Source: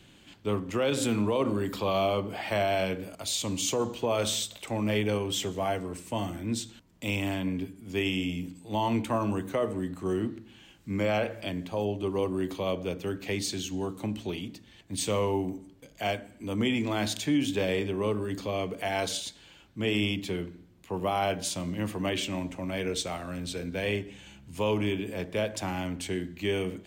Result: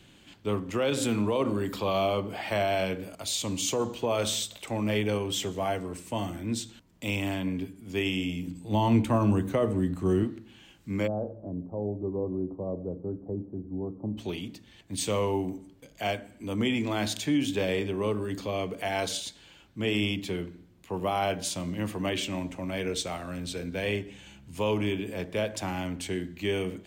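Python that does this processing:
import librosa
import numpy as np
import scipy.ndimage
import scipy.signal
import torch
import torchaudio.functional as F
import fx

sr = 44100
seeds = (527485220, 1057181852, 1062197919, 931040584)

y = fx.low_shelf(x, sr, hz=260.0, db=10.0, at=(8.47, 10.24))
y = fx.gaussian_blur(y, sr, sigma=12.0, at=(11.06, 14.17), fade=0.02)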